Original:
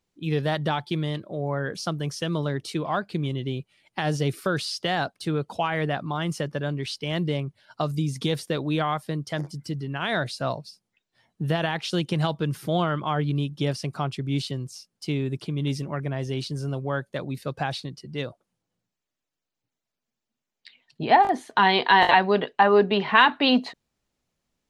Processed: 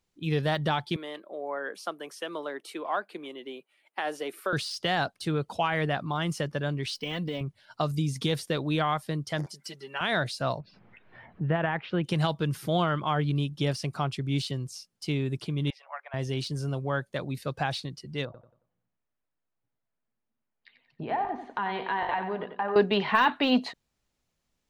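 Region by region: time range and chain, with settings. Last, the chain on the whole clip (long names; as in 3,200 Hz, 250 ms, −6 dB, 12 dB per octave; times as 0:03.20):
0:00.96–0:04.53: Bessel high-pass filter 440 Hz, order 8 + parametric band 5,300 Hz −12 dB 1.5 octaves
0:06.95–0:07.41: comb filter 4 ms, depth 75% + downward compressor 5 to 1, threshold −26 dBFS + linearly interpolated sample-rate reduction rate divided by 2×
0:09.46–0:10.01: high-pass filter 500 Hz + comb filter 5.1 ms, depth 79%
0:10.60–0:12.04: low-pass filter 2,200 Hz 24 dB per octave + upward compression, threshold −33 dBFS
0:15.70–0:16.14: Butterworth high-pass 660 Hz 48 dB per octave + high-frequency loss of the air 380 metres
0:18.25–0:22.76: low-pass filter 1,800 Hz + downward compressor 2 to 1, threshold −33 dBFS + repeating echo 91 ms, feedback 35%, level −9 dB
whole clip: low-shelf EQ 130 Hz +8.5 dB; de-essing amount 75%; low-shelf EQ 460 Hz −6 dB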